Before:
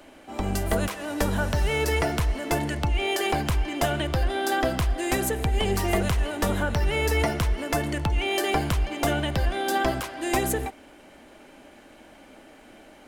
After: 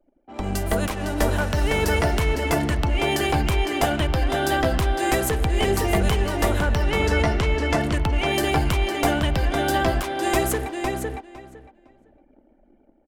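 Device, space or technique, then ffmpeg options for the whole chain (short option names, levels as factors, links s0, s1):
voice memo with heavy noise removal: -filter_complex "[0:a]asettb=1/sr,asplit=3[s0][s1][s2];[s0]atrim=end=6.824[s3];[s1]atrim=start=6.82:end=7.81,asetpts=PTS-STARTPTS,afade=t=in:d=0.004:c=qsin,afade=t=out:st=0.986:d=0.004:c=qsin,lowpass=6700[s4];[s2]atrim=start=7.806[s5];[s3][s4]acrossfade=d=0.004:c1=hsin:c2=qsin[s6];[s6][s5]acrossfade=d=0.004:c1=qsin:c2=hsin,anlmdn=0.251,dynaudnorm=f=110:g=7:m=2.24,asplit=2[s7][s8];[s8]adelay=507,lowpass=f=4000:p=1,volume=0.708,asplit=2[s9][s10];[s10]adelay=507,lowpass=f=4000:p=1,volume=0.17,asplit=2[s11][s12];[s12]adelay=507,lowpass=f=4000:p=1,volume=0.17[s13];[s7][s9][s11][s13]amix=inputs=4:normalize=0,volume=0.562"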